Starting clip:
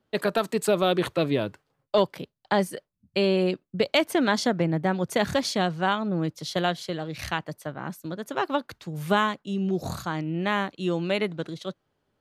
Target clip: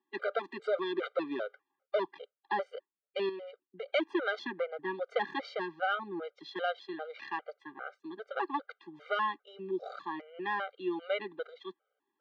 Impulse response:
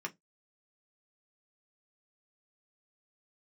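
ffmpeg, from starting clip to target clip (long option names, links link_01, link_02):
-filter_complex "[0:a]volume=17dB,asoftclip=hard,volume=-17dB,highpass=frequency=380:width=0.5412,highpass=frequency=380:width=1.3066,equalizer=frequency=430:width_type=q:width=4:gain=-5,equalizer=frequency=660:width_type=q:width=4:gain=-8,equalizer=frequency=1000:width_type=q:width=4:gain=-5,equalizer=frequency=1800:width_type=q:width=4:gain=-4,equalizer=frequency=2600:width_type=q:width=4:gain=-9,lowpass=frequency=2900:width=0.5412,lowpass=frequency=2900:width=1.3066,asettb=1/sr,asplit=3[link_01][link_02][link_03];[link_01]atrim=end=3.294[link_04];[link_02]atrim=start=3.29:end=3.88,asetpts=PTS-STARTPTS,afade=type=in:duration=0.004:curve=qsin,afade=type=out:start_time=0.586:duration=0.004:curve=qsin,acompressor=threshold=-48dB:ratio=2[link_05];[link_03]atrim=start=3.876[link_06];[link_04][link_05]acrossfade=duration=0.004:curve1=hsin:curve2=qsin[link_07];[link_07][link_06]acrossfade=duration=0.004:curve1=qsin:curve2=hsin,afftfilt=real='re*gt(sin(2*PI*2.5*pts/sr)*(1-2*mod(floor(b*sr/1024/400),2)),0)':imag='im*gt(sin(2*PI*2.5*pts/sr)*(1-2*mod(floor(b*sr/1024/400),2)),0)':win_size=1024:overlap=0.75,volume=1.5dB"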